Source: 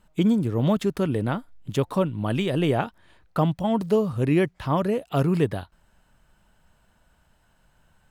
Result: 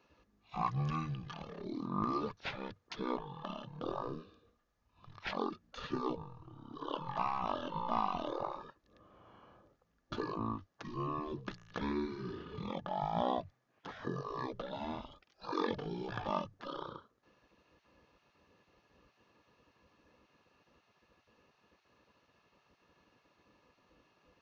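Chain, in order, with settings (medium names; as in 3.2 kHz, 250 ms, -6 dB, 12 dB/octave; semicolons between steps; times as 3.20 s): wide varispeed 0.332×; small resonant body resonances 1.2/1.7 kHz, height 11 dB, ringing for 40 ms; spectral gate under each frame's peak -15 dB weak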